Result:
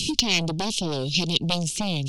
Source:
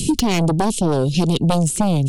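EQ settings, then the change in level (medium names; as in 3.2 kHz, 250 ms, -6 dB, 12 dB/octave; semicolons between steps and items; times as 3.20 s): high-order bell 3.8 kHz +15 dB; -10.0 dB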